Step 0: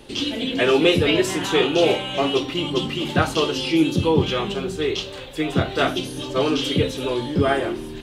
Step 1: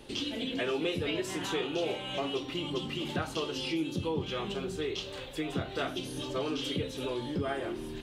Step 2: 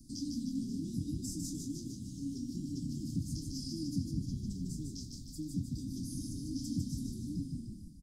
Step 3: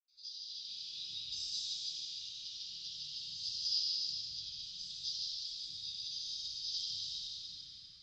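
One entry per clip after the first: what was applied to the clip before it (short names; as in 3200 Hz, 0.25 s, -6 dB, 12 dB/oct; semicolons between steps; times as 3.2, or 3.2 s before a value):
compressor 2.5:1, threshold -27 dBFS, peak gain reduction 10.5 dB; gain -6 dB
ending faded out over 0.85 s; Chebyshev band-stop 290–4900 Hz, order 5; frequency-shifting echo 0.151 s, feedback 54%, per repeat -34 Hz, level -4 dB
elliptic high-pass 1200 Hz, stop band 50 dB; AGC gain up to 11.5 dB; reverb RT60 1.6 s, pre-delay 76 ms; gain +5.5 dB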